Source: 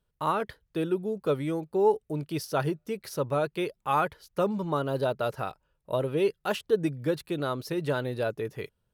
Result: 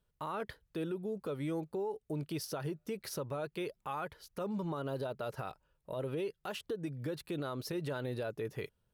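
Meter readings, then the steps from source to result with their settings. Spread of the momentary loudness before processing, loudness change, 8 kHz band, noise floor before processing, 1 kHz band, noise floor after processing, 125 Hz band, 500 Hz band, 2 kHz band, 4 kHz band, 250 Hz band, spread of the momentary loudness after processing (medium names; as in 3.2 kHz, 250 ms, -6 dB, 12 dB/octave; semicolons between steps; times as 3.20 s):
7 LU, -10.0 dB, -3.5 dB, -77 dBFS, -12.0 dB, -79 dBFS, -7.5 dB, -11.0 dB, -9.5 dB, -7.0 dB, -8.0 dB, 4 LU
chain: compression 4:1, threshold -30 dBFS, peak gain reduction 11 dB; peak limiter -28 dBFS, peak gain reduction 8.5 dB; trim -1.5 dB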